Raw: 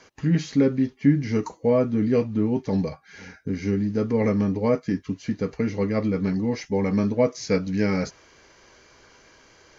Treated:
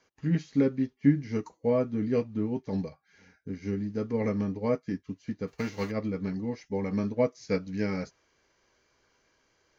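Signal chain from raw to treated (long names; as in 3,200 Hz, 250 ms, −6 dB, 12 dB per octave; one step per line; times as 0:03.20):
0:05.47–0:05.90: spectral envelope flattened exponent 0.6
expander for the loud parts 1.5 to 1, over −39 dBFS
level −3 dB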